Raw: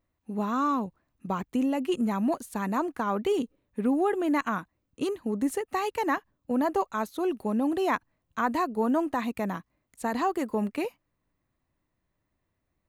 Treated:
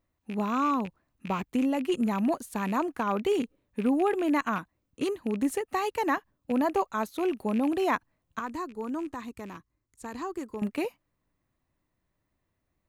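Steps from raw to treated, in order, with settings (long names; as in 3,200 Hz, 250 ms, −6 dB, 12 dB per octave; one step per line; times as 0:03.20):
loose part that buzzes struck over −38 dBFS, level −31 dBFS
0:08.39–0:10.62: drawn EQ curve 110 Hz 0 dB, 190 Hz −12 dB, 350 Hz −4 dB, 670 Hz −15 dB, 1,100 Hz −7 dB, 2,700 Hz −12 dB, 7,200 Hz −3 dB, 11,000 Hz −10 dB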